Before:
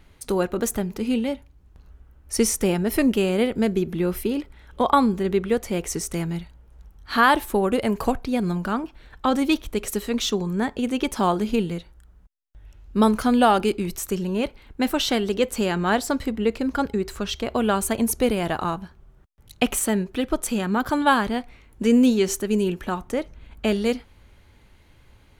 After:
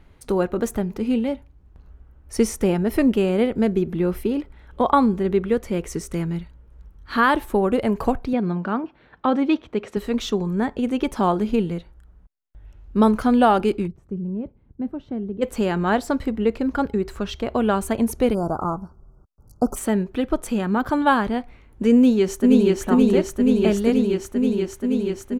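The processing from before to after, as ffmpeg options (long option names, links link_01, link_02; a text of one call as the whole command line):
ffmpeg -i in.wav -filter_complex "[0:a]asettb=1/sr,asplit=3[link_01][link_02][link_03];[link_01]atrim=end=5.504[link_04];[link_02]atrim=start=5.5:end=7.41,asetpts=PTS-STARTPTS,afade=type=in:duration=0.004:curve=qsin,afade=type=out:start_time=1.906:duration=0.004:curve=qsin,equalizer=frequency=750:width_type=o:width=0.41:gain=-6.5[link_05];[link_03]atrim=start=7.406[link_06];[link_04][link_05]acrossfade=duration=0.004:curve1=hsin:curve2=qsin[link_07];[link_07][link_06]acrossfade=duration=0.004:curve1=qsin:curve2=hsin,asettb=1/sr,asplit=3[link_08][link_09][link_10];[link_08]atrim=end=8.334[link_11];[link_09]atrim=start=8.33:end=9.97,asetpts=PTS-STARTPTS,afade=type=in:duration=0.004:curve=qsin,afade=type=out:start_time=1.636:duration=0.004:curve=qsin,highpass=140,lowpass=3800[link_12];[link_10]atrim=start=9.966[link_13];[link_11][link_12]acrossfade=duration=0.004:curve1=hsin:curve2=qsin[link_14];[link_14][link_13]acrossfade=duration=0.004:curve1=qsin:curve2=hsin,asplit=3[link_15][link_16][link_17];[link_15]afade=type=out:start_time=13.86:duration=0.02[link_18];[link_16]bandpass=frequency=130:width_type=q:width=1.1,afade=type=in:start_time=13.86:duration=0.02,afade=type=out:start_time=15.41:duration=0.02[link_19];[link_17]afade=type=in:start_time=15.41:duration=0.02[link_20];[link_18][link_19][link_20]amix=inputs=3:normalize=0,asplit=3[link_21][link_22][link_23];[link_21]afade=type=out:start_time=18.33:duration=0.02[link_24];[link_22]asuperstop=centerf=2600:order=20:qfactor=0.82,afade=type=in:start_time=18.33:duration=0.02,afade=type=out:start_time=19.75:duration=0.02[link_25];[link_23]afade=type=in:start_time=19.75:duration=0.02[link_26];[link_24][link_25][link_26]amix=inputs=3:normalize=0,asplit=2[link_27][link_28];[link_28]afade=type=in:start_time=21.95:duration=0.01,afade=type=out:start_time=22.81:duration=0.01,aecho=0:1:480|960|1440|1920|2400|2880|3360|3840|4320|4800|5280|5760:0.891251|0.757563|0.643929|0.547339|0.465239|0.395453|0.336135|0.285715|0.242857|0.206429|0.175464|0.149145[link_29];[link_27][link_29]amix=inputs=2:normalize=0,highshelf=frequency=2600:gain=-10.5,volume=2dB" out.wav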